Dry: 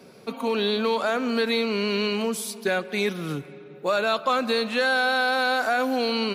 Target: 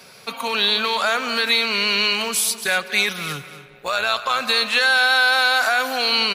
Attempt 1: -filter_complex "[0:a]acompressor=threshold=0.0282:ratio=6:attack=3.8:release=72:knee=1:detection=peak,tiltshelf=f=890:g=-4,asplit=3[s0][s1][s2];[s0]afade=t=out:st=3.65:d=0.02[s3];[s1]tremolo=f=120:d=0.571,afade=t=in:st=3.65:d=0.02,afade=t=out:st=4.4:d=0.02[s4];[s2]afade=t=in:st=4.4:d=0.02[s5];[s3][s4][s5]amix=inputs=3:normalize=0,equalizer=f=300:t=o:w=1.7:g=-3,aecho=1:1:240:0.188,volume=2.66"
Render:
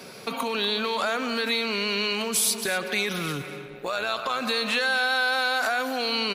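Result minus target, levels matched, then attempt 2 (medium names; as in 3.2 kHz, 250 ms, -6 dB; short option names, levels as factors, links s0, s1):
compression: peak gain reduction +8.5 dB; 250 Hz band +8.0 dB
-filter_complex "[0:a]acompressor=threshold=0.0944:ratio=6:attack=3.8:release=72:knee=1:detection=peak,tiltshelf=f=890:g=-4,asplit=3[s0][s1][s2];[s0]afade=t=out:st=3.65:d=0.02[s3];[s1]tremolo=f=120:d=0.571,afade=t=in:st=3.65:d=0.02,afade=t=out:st=4.4:d=0.02[s4];[s2]afade=t=in:st=4.4:d=0.02[s5];[s3][s4][s5]amix=inputs=3:normalize=0,equalizer=f=300:t=o:w=1.7:g=-14,aecho=1:1:240:0.188,volume=2.66"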